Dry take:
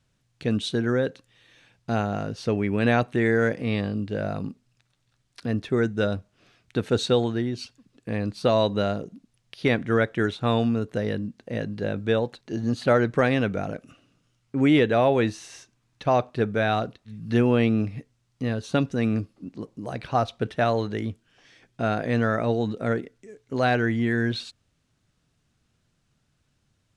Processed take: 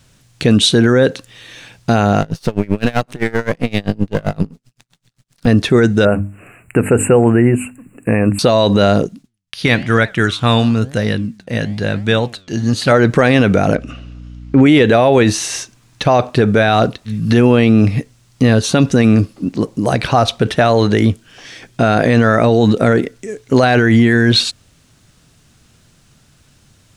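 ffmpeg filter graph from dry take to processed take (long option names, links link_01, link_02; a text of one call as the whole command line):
ffmpeg -i in.wav -filter_complex "[0:a]asettb=1/sr,asplit=3[link_01][link_02][link_03];[link_01]atrim=end=2.214[link_04];[link_02]atrim=start=2.21:end=5.47,asetpts=PTS-STARTPTS,afade=type=in:duration=0.004:curve=qsin,afade=type=out:start_time=3.256:duration=0.004:curve=qsin,aeval=exprs='if(lt(val(0),0),0.251*val(0),val(0))':channel_layout=same,equalizer=frequency=160:width=4:gain=8.5,aeval=exprs='val(0)*pow(10,-31*(0.5-0.5*cos(2*PI*7.7*n/s))/20)':channel_layout=same[link_05];[link_03]atrim=start=5.466[link_06];[link_04][link_05]acrossfade=duration=0.004:curve1=hsin:curve2=qsin[link_07];[link_07][link_06]acrossfade=duration=0.004:curve1=qsin:curve2=hsin,asettb=1/sr,asplit=3[link_08][link_09][link_10];[link_08]atrim=end=6.054[link_11];[link_09]atrim=start=6.05:end=8.39,asetpts=PTS-STARTPTS,afade=type=in:duration=0.004:curve=qsin,afade=type=out:start_time=2.336:duration=0.004:curve=qsin,asuperstop=centerf=4600:order=20:qfactor=1,bandreject=frequency=50:width_type=h:width=6,bandreject=frequency=100:width_type=h:width=6,bandreject=frequency=150:width_type=h:width=6,bandreject=frequency=200:width_type=h:width=6,bandreject=frequency=250:width_type=h:width=6,bandreject=frequency=300:width_type=h:width=6[link_12];[link_10]atrim=start=8.386[link_13];[link_11][link_12]acrossfade=duration=0.004:curve1=hsin:curve2=qsin[link_14];[link_14][link_13]acrossfade=duration=0.004:curve1=qsin:curve2=hsin,asettb=1/sr,asplit=3[link_15][link_16][link_17];[link_15]atrim=end=9.074[link_18];[link_16]atrim=start=9.07:end=12.92,asetpts=PTS-STARTPTS,afade=type=in:duration=0.004:curve=qsin,afade=type=out:start_time=3.846:duration=0.004:curve=qsin,agate=range=-33dB:threshold=-52dB:ratio=3:release=100:detection=peak,flanger=delay=4.3:depth=8.8:regen=89:speed=1:shape=triangular,equalizer=frequency=430:width_type=o:width=2.1:gain=-7.5[link_19];[link_17]atrim=start=12.916[link_20];[link_18][link_19]acrossfade=duration=0.004:curve1=hsin:curve2=qsin[link_21];[link_21][link_20]acrossfade=duration=0.004:curve1=qsin:curve2=hsin,asettb=1/sr,asplit=3[link_22][link_23][link_24];[link_22]atrim=end=13.754[link_25];[link_23]atrim=start=13.75:end=14.66,asetpts=PTS-STARTPTS,afade=type=in:duration=0.004:curve=qsin,afade=type=out:start_time=0.906:duration=0.004:curve=qsin,lowpass=4200,aeval=exprs='val(0)+0.00316*(sin(2*PI*60*n/s)+sin(2*PI*2*60*n/s)/2+sin(2*PI*3*60*n/s)/3+sin(2*PI*4*60*n/s)/4+sin(2*PI*5*60*n/s)/5)':channel_layout=same[link_26];[link_24]atrim=start=14.656[link_27];[link_25][link_26]acrossfade=duration=0.004:curve1=hsin:curve2=qsin[link_28];[link_28][link_27]acrossfade=duration=0.004:curve1=qsin:curve2=hsin,highshelf=frequency=5700:gain=7.5,alimiter=level_in=19.5dB:limit=-1dB:release=50:level=0:latency=1,volume=-1dB" out.wav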